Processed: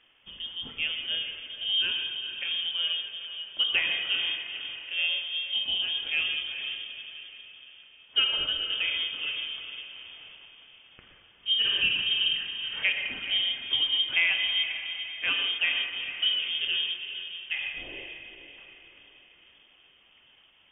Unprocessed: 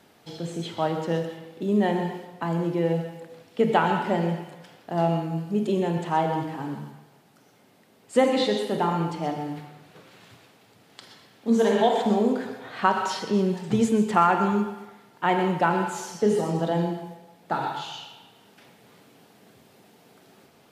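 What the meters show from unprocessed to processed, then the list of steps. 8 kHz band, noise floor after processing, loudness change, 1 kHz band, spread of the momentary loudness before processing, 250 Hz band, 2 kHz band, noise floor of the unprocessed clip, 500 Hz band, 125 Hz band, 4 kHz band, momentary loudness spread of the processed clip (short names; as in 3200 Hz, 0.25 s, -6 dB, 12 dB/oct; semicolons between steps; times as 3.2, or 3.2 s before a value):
under -35 dB, -60 dBFS, -1.5 dB, -24.0 dB, 15 LU, -29.5 dB, +5.5 dB, -58 dBFS, -26.5 dB, under -25 dB, +15.0 dB, 16 LU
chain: diffused feedback echo 0.457 s, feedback 46%, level -9 dB; inverted band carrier 3400 Hz; gain -5.5 dB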